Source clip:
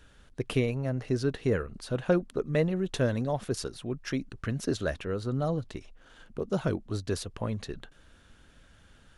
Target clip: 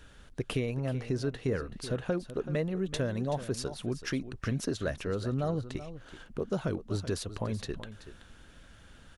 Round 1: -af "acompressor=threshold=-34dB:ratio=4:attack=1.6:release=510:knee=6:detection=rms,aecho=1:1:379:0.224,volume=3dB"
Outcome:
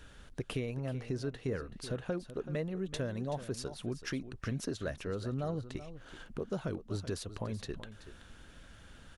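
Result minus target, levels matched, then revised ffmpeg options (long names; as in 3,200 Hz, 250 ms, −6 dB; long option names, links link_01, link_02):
downward compressor: peak gain reduction +5 dB
-af "acompressor=threshold=-27.5dB:ratio=4:attack=1.6:release=510:knee=6:detection=rms,aecho=1:1:379:0.224,volume=3dB"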